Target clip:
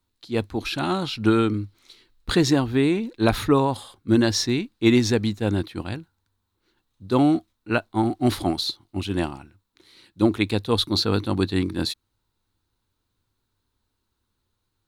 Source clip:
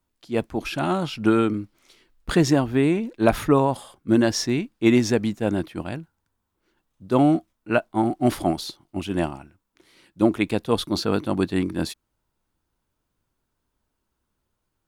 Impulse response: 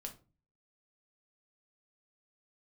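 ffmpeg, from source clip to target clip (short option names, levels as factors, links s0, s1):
-af "equalizer=f=100:t=o:w=0.33:g=8,equalizer=f=160:t=o:w=0.33:g=-4,equalizer=f=630:t=o:w=0.33:g=-7,equalizer=f=4000:t=o:w=0.33:g=11"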